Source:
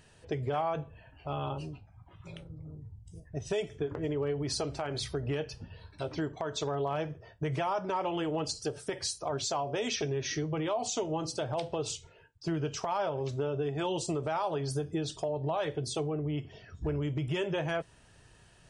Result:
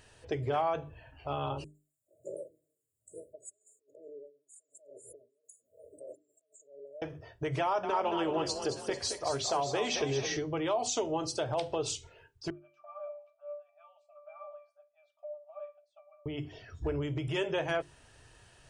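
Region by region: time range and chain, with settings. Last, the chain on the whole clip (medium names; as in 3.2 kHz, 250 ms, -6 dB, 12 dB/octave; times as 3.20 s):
1.64–7.02 s: compressor with a negative ratio -45 dBFS + LFO high-pass sine 1.1 Hz 440–3500 Hz + brick-wall FIR band-stop 660–6700 Hz
7.61–10.37 s: treble shelf 7.1 kHz -5.5 dB + frequency-shifting echo 221 ms, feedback 43%, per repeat +32 Hz, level -8 dB
12.50–16.26 s: brick-wall FIR high-pass 560 Hz + peaking EQ 5.5 kHz -7 dB 1.9 oct + pitch-class resonator D, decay 0.29 s
whole clip: peaking EQ 180 Hz -11 dB 0.43 oct; hum notches 50/100/150/200/250/300/350/400 Hz; trim +1.5 dB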